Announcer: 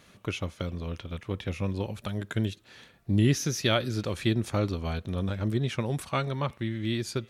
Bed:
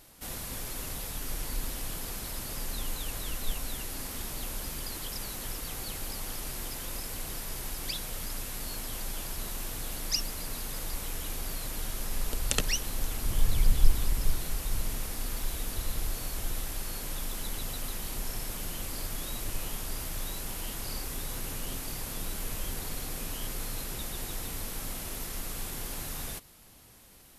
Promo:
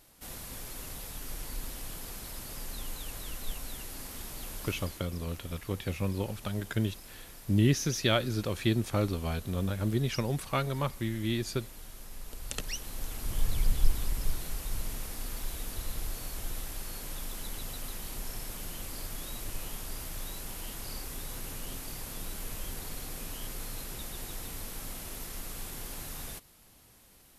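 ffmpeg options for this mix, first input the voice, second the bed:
ffmpeg -i stem1.wav -i stem2.wav -filter_complex "[0:a]adelay=4400,volume=-1.5dB[link_01];[1:a]volume=4dB,afade=type=out:start_time=4.73:duration=0.32:silence=0.421697,afade=type=in:start_time=12.25:duration=1.16:silence=0.375837[link_02];[link_01][link_02]amix=inputs=2:normalize=0" out.wav

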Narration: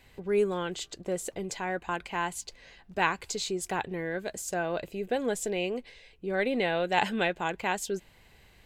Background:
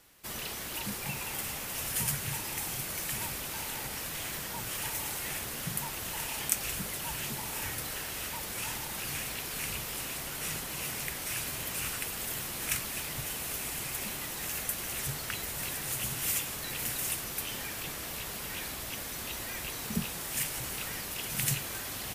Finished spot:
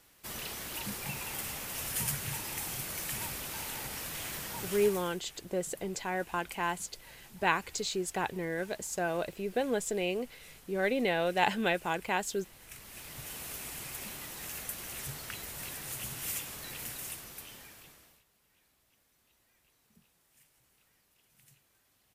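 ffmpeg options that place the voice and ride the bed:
ffmpeg -i stem1.wav -i stem2.wav -filter_complex "[0:a]adelay=4450,volume=-1.5dB[link_01];[1:a]volume=12dB,afade=type=out:start_time=4.64:duration=0.55:silence=0.133352,afade=type=in:start_time=12.7:duration=0.68:silence=0.199526,afade=type=out:start_time=16.66:duration=1.58:silence=0.0421697[link_02];[link_01][link_02]amix=inputs=2:normalize=0" out.wav

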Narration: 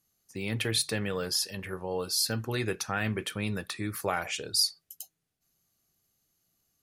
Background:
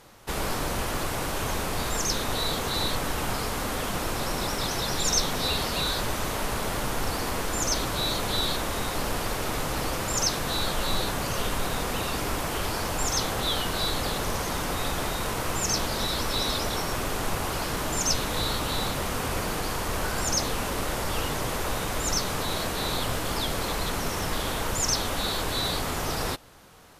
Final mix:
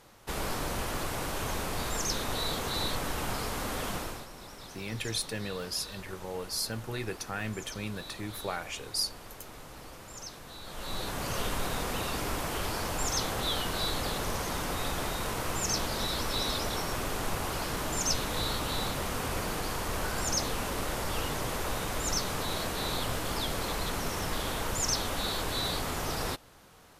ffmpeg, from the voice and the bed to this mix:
ffmpeg -i stem1.wav -i stem2.wav -filter_complex "[0:a]adelay=4400,volume=-5dB[link_01];[1:a]volume=9.5dB,afade=type=out:start_time=3.91:duration=0.36:silence=0.211349,afade=type=in:start_time=10.63:duration=0.72:silence=0.199526[link_02];[link_01][link_02]amix=inputs=2:normalize=0" out.wav

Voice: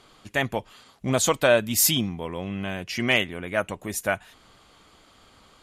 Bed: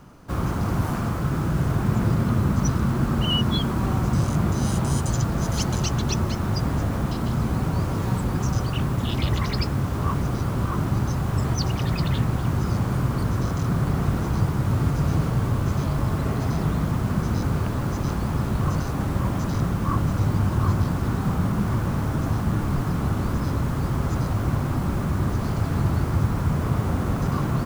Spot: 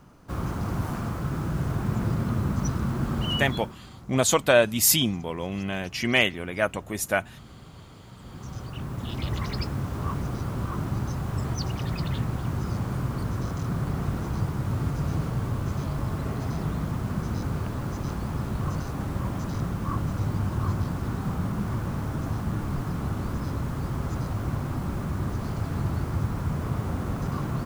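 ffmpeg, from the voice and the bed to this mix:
ffmpeg -i stem1.wav -i stem2.wav -filter_complex "[0:a]adelay=3050,volume=0.5dB[link_01];[1:a]volume=13dB,afade=type=out:start_time=3.34:duration=0.43:silence=0.11885,afade=type=in:start_time=8.15:duration=1.29:silence=0.125893[link_02];[link_01][link_02]amix=inputs=2:normalize=0" out.wav

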